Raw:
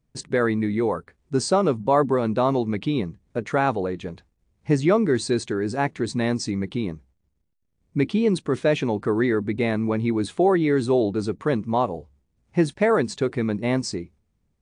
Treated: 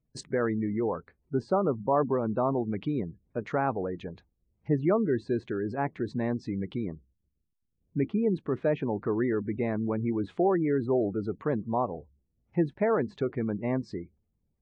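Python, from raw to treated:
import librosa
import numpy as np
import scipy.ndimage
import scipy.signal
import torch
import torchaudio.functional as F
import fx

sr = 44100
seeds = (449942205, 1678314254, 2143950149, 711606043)

y = fx.spec_gate(x, sr, threshold_db=-30, keep='strong')
y = fx.env_lowpass_down(y, sr, base_hz=1600.0, full_db=-20.5)
y = y * librosa.db_to_amplitude(-6.0)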